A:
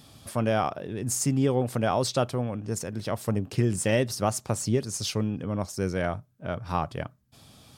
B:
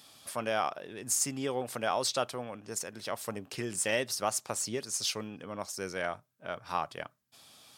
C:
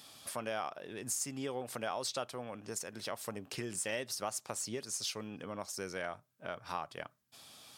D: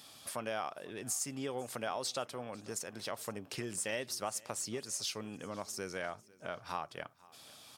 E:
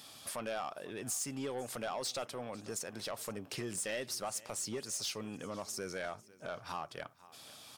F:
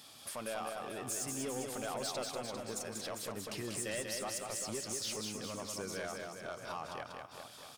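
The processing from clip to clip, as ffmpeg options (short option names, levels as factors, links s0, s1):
-af "highpass=f=1000:p=1"
-af "acompressor=threshold=0.00891:ratio=2,volume=1.12"
-af "aecho=1:1:498|996|1494:0.0708|0.0354|0.0177"
-af "asoftclip=type=tanh:threshold=0.0224,volume=1.26"
-af "aecho=1:1:190|399|628.9|881.8|1160:0.631|0.398|0.251|0.158|0.1,volume=0.794"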